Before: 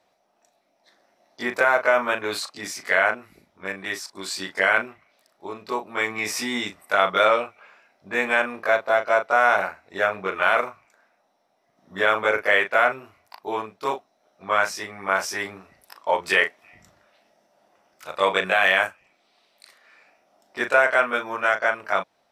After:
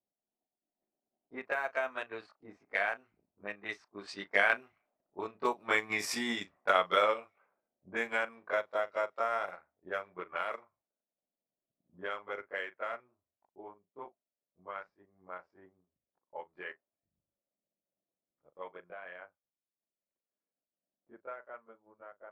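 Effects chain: Doppler pass-by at 5.50 s, 20 m/s, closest 27 m; transient shaper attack +4 dB, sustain -8 dB; level-controlled noise filter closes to 350 Hz, open at -25 dBFS; trim -6.5 dB

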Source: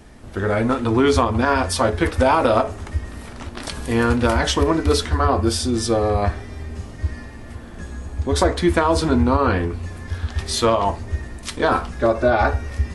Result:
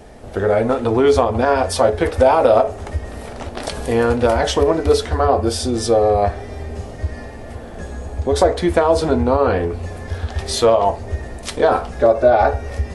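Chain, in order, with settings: high-order bell 580 Hz +8.5 dB 1.2 oct; in parallel at +1 dB: compression, threshold -21 dBFS, peak gain reduction 15 dB; on the sum: trim -4.5 dB

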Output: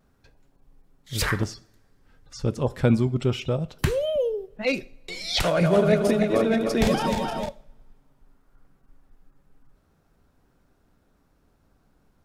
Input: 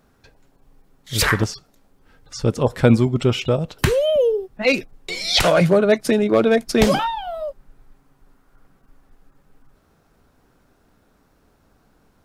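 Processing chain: 5.46–7.49 s: backward echo that repeats 154 ms, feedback 66%, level -3.5 dB; bass shelf 200 Hz +5.5 dB; two-slope reverb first 0.52 s, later 3 s, from -27 dB, DRR 16.5 dB; vibrato 0.32 Hz 6.9 cents; trim -8 dB

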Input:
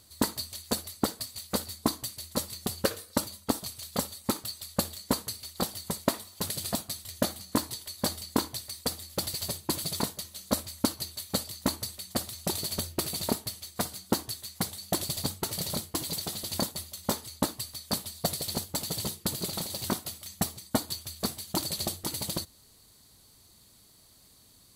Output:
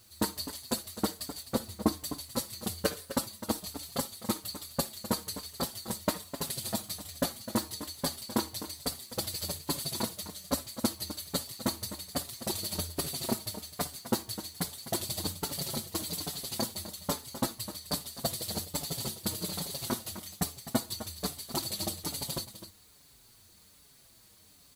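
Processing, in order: 1.42–1.92 s: tilt shelf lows +4.5 dB, about 1.3 kHz; in parallel at -12 dB: word length cut 8-bit, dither triangular; on the sum: delay 256 ms -12 dB; endless flanger 5.7 ms -1.2 Hz; trim -1.5 dB

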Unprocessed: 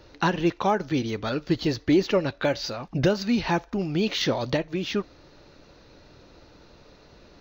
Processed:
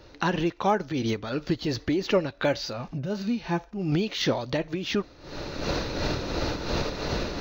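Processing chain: recorder AGC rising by 44 dB/s; 2.73–3.92 s: harmonic-percussive split percussive -17 dB; tremolo 2.8 Hz, depth 56%

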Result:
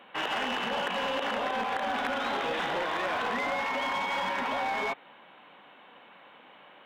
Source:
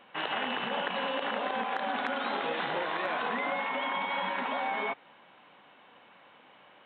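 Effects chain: high-pass 140 Hz; in parallel at -6 dB: wavefolder -32 dBFS

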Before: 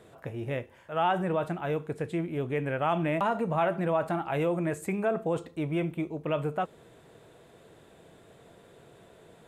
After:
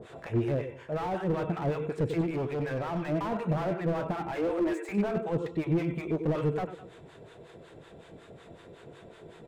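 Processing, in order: 4.35–4.92 s: steep high-pass 280 Hz 96 dB/octave; gain riding within 3 dB 0.5 s; peak limiter -25 dBFS, peak gain reduction 8 dB; harmonic tremolo 5.4 Hz, depth 100%, crossover 760 Hz; 2.21–3.09 s: hard clipper -37 dBFS, distortion -14 dB; distance through air 67 m; delay 207 ms -22 dB; reverberation, pre-delay 92 ms, DRR 11.5 dB; slew-rate limiter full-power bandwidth 8.6 Hz; trim +9 dB

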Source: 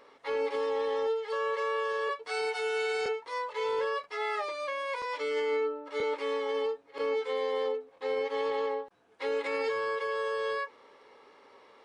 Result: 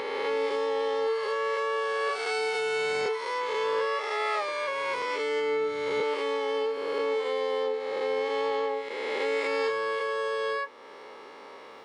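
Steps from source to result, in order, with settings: reverse spectral sustain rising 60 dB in 2.14 s; in parallel at +2.5 dB: compression, threshold -45 dBFS, peak gain reduction 17.5 dB; on the sum: high-pass 120 Hz 12 dB/octave

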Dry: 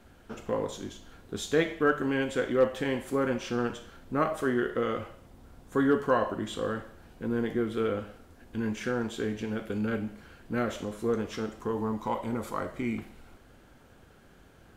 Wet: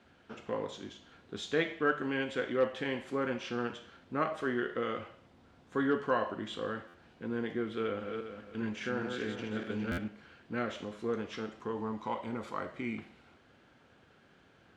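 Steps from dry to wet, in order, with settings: 7.80–10.08 s: backward echo that repeats 204 ms, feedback 49%, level -4.5 dB; band-pass 100–3200 Hz; treble shelf 2.3 kHz +11 dB; buffer glitch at 6.87/9.91 s, samples 512, times 5; trim -6 dB

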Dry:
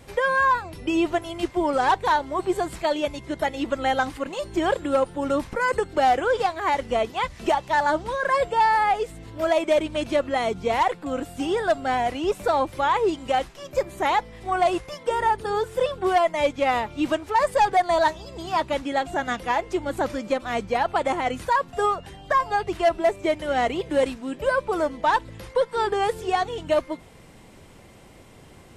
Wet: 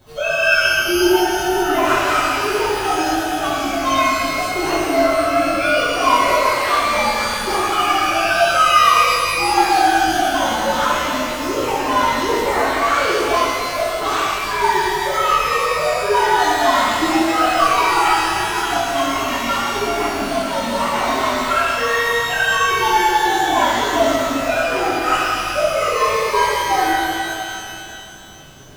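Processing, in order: frequency axis rescaled in octaves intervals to 126%; pitch-shifted reverb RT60 2.6 s, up +12 st, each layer -8 dB, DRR -8.5 dB

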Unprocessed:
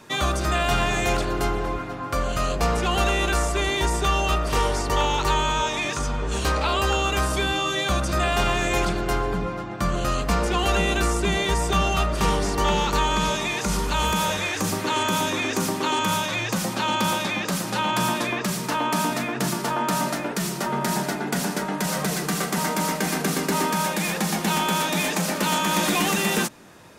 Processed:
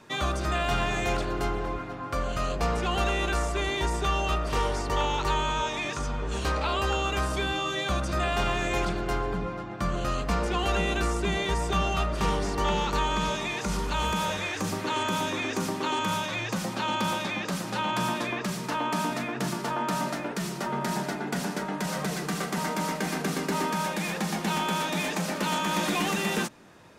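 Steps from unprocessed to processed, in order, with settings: treble shelf 7.9 kHz -9 dB; trim -4.5 dB

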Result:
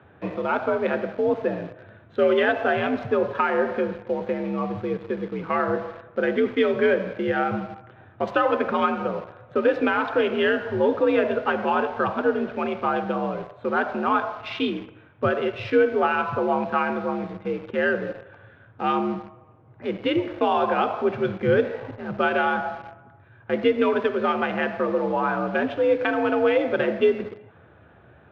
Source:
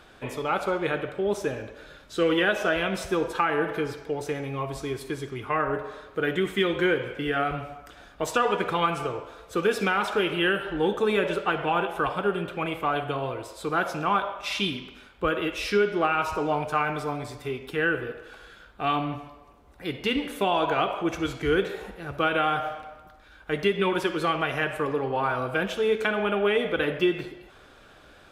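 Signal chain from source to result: local Wiener filter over 9 samples; frequency shift +63 Hz; bass shelf 280 Hz +5.5 dB; in parallel at -7 dB: bit crusher 6-bit; on the sum: distance through air 290 m

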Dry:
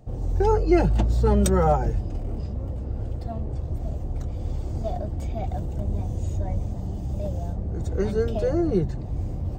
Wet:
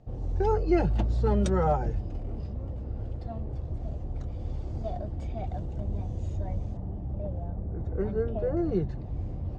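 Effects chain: low-pass 4.9 kHz 12 dB/octave, from 6.77 s 1.6 kHz, from 8.57 s 3.9 kHz; trim -5 dB

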